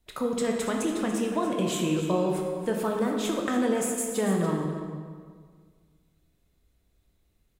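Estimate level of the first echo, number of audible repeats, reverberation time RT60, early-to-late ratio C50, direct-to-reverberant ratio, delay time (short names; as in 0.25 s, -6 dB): -11.5 dB, 1, 1.8 s, 2.0 dB, 0.5 dB, 0.286 s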